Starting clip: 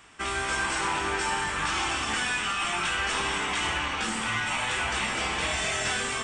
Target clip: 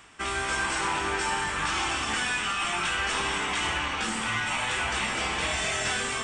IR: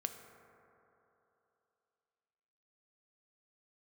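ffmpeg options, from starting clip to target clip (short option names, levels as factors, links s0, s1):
-af "areverse,acompressor=mode=upward:threshold=0.0158:ratio=2.5,areverse"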